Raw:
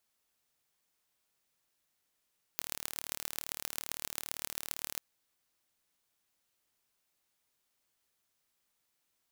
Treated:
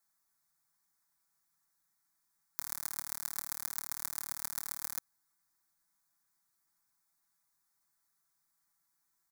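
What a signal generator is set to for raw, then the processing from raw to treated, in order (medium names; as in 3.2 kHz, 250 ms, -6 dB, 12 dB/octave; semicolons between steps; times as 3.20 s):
pulse train 37.7 per s, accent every 5, -6.5 dBFS 2.40 s
bass shelf 180 Hz -4.5 dB; static phaser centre 1.2 kHz, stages 4; comb 6 ms, depth 74%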